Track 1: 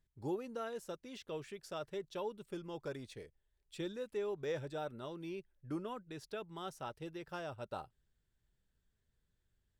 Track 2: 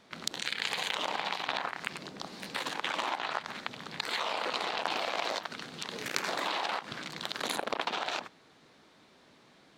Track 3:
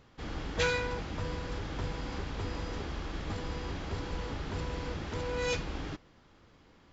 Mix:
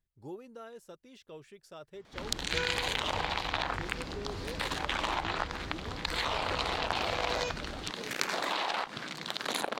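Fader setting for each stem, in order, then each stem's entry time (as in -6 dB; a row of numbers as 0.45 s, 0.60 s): -5.0 dB, +0.5 dB, -5.5 dB; 0.00 s, 2.05 s, 1.95 s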